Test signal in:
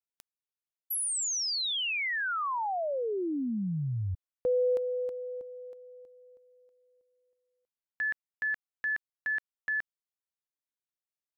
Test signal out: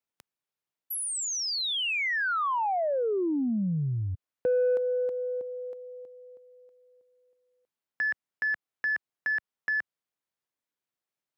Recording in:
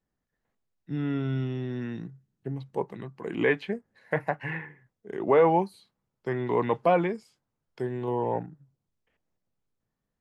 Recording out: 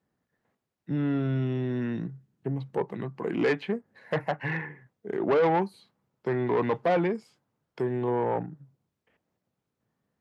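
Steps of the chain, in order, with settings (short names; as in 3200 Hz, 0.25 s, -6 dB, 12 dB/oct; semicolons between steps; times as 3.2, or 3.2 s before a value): high shelf 3500 Hz -8.5 dB; in parallel at -0.5 dB: compressor, threshold -36 dBFS; on the sum: soft clip -20 dBFS; HPF 100 Hz; gain +1.5 dB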